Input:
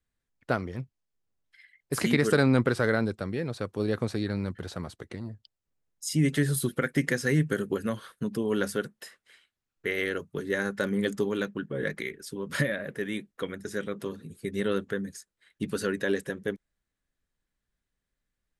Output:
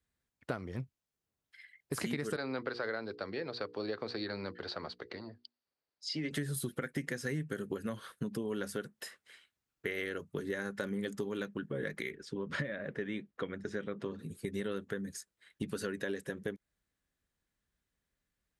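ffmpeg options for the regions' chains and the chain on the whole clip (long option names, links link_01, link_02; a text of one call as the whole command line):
ffmpeg -i in.wav -filter_complex "[0:a]asettb=1/sr,asplit=3[link_01][link_02][link_03];[link_01]atrim=end=2.364[link_04];[link_02]atrim=start=2.36:end=6.31,asetpts=PTS-STARTPTS,afade=type=in:duration=0.004:curve=qsin,afade=type=out:start_time=3.946:duration=0.004:curve=qsin,lowpass=frequency=4600:width_type=q:width=9.5,acrossover=split=310 2700:gain=0.178 1 0.2[link_05][link_06][link_07];[link_05][link_06][link_07]amix=inputs=3:normalize=0,bandreject=frequency=60:width_type=h:width=6,bandreject=frequency=120:width_type=h:width=6,bandreject=frequency=180:width_type=h:width=6,bandreject=frequency=240:width_type=h:width=6,bandreject=frequency=300:width_type=h:width=6,bandreject=frequency=360:width_type=h:width=6,bandreject=frequency=420:width_type=h:width=6,bandreject=frequency=480:width_type=h:width=6[link_08];[link_03]atrim=start=6.306[link_09];[link_04][link_08]acrossfade=duration=0.004:curve1=hsin:curve2=qsin[link_10];[link_10][link_09]acrossfade=duration=0.004:curve1=qsin:curve2=hsin,asettb=1/sr,asplit=3[link_11][link_12][link_13];[link_11]atrim=end=12.154[link_14];[link_12]atrim=start=12.15:end=14.19,asetpts=PTS-STARTPTS,afade=type=in:duration=0.004:curve=qsin,afade=type=out:start_time=2.036:duration=0.004:curve=qsin,lowpass=6400,aemphasis=mode=reproduction:type=50kf[link_15];[link_13]atrim=start=14.186[link_16];[link_14][link_15]acrossfade=duration=0.004:curve1=hsin:curve2=qsin[link_17];[link_17][link_16]acrossfade=duration=0.004:curve1=qsin:curve2=hsin,highpass=43,acompressor=threshold=-34dB:ratio=5" out.wav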